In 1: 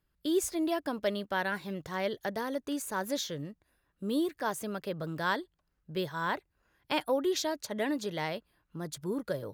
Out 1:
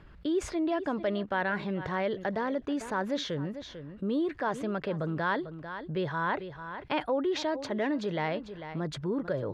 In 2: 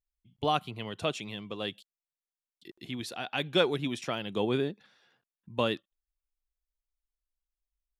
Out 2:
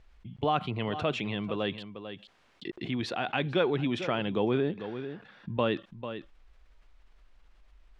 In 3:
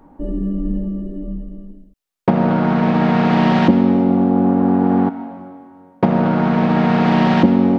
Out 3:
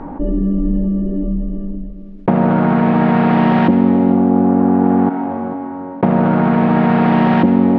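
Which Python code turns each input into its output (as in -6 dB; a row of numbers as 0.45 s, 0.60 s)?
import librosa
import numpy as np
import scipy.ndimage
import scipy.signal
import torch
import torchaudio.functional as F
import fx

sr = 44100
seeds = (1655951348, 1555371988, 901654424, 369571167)

y = scipy.signal.sosfilt(scipy.signal.butter(2, 2500.0, 'lowpass', fs=sr, output='sos'), x)
y = y + 10.0 ** (-20.5 / 20.0) * np.pad(y, (int(446 * sr / 1000.0), 0))[:len(y)]
y = fx.env_flatten(y, sr, amount_pct=50)
y = y * 10.0 ** (-1.5 / 20.0)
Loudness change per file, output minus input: +1.5 LU, +1.0 LU, +1.5 LU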